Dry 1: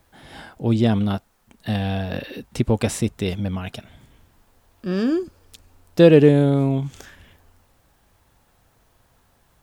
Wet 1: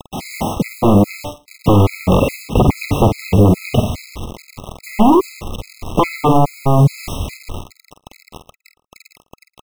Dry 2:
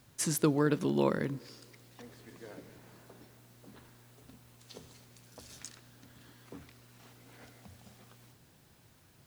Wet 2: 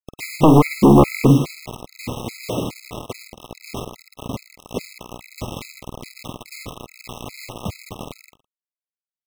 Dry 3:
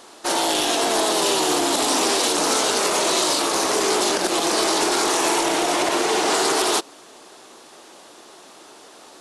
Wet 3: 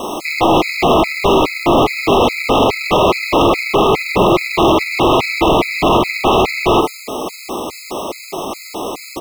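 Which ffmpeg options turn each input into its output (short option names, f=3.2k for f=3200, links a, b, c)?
-filter_complex "[0:a]lowpass=f=2.3k:w=0.5412,lowpass=f=2.3k:w=1.3066,lowshelf=f=390:g=5.5,bandreject=f=146.9:t=h:w=4,bandreject=f=293.8:t=h:w=4,bandreject=f=440.7:t=h:w=4,bandreject=f=587.6:t=h:w=4,bandreject=f=734.5:t=h:w=4,bandreject=f=881.4:t=h:w=4,bandreject=f=1.0283k:t=h:w=4,bandreject=f=1.1752k:t=h:w=4,bandreject=f=1.3221k:t=h:w=4,bandreject=f=1.469k:t=h:w=4,bandreject=f=1.6159k:t=h:w=4,bandreject=f=1.7628k:t=h:w=4,bandreject=f=1.9097k:t=h:w=4,bandreject=f=2.0566k:t=h:w=4,bandreject=f=2.2035k:t=h:w=4,bandreject=f=2.3504k:t=h:w=4,bandreject=f=2.4973k:t=h:w=4,bandreject=f=2.6442k:t=h:w=4,bandreject=f=2.7911k:t=h:w=4,bandreject=f=2.938k:t=h:w=4,bandreject=f=3.0849k:t=h:w=4,bandreject=f=3.2318k:t=h:w=4,bandreject=f=3.3787k:t=h:w=4,bandreject=f=3.5256k:t=h:w=4,bandreject=f=3.6725k:t=h:w=4,bandreject=f=3.8194k:t=h:w=4,acompressor=threshold=-19dB:ratio=6,aresample=16000,aeval=exprs='0.075*(abs(mod(val(0)/0.075+3,4)-2)-1)':c=same,aresample=44100,acrusher=bits=7:mix=0:aa=0.000001,asoftclip=type=tanh:threshold=-23.5dB,asuperstop=centerf=1600:order=20:qfactor=2.2,asplit=2[a][b];[b]adelay=49,volume=-8dB[c];[a][c]amix=inputs=2:normalize=0,aecho=1:1:112:0.0708,alimiter=level_in=24dB:limit=-1dB:release=50:level=0:latency=1,afftfilt=real='re*gt(sin(2*PI*2.4*pts/sr)*(1-2*mod(floor(b*sr/1024/1300),2)),0)':imag='im*gt(sin(2*PI*2.4*pts/sr)*(1-2*mod(floor(b*sr/1024/1300),2)),0)':win_size=1024:overlap=0.75,volume=-1.5dB"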